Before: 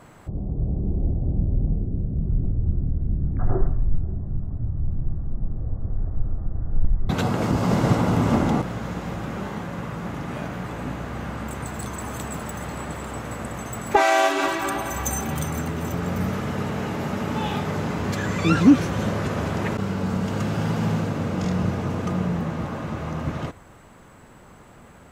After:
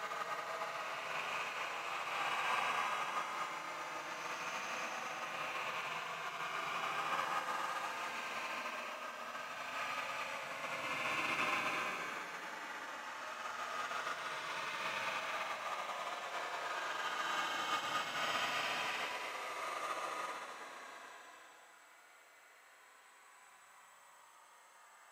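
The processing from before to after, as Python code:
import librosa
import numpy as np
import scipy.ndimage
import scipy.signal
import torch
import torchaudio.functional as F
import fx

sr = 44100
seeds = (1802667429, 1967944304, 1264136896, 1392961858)

y = fx.rattle_buzz(x, sr, strikes_db=-24.0, level_db=-27.0)
y = scipy.signal.sosfilt(scipy.signal.butter(2, 1100.0, 'highpass', fs=sr, output='sos'), y)
y = fx.paulstretch(y, sr, seeds[0], factor=43.0, window_s=0.05, from_s=23.02)
y = y + 10.0 ** (-22.0 / 20.0) * np.pad(y, (int(1164 * sr / 1000.0), 0))[:len(y)]
y = fx.upward_expand(y, sr, threshold_db=-43.0, expansion=2.5)
y = y * librosa.db_to_amplitude(3.5)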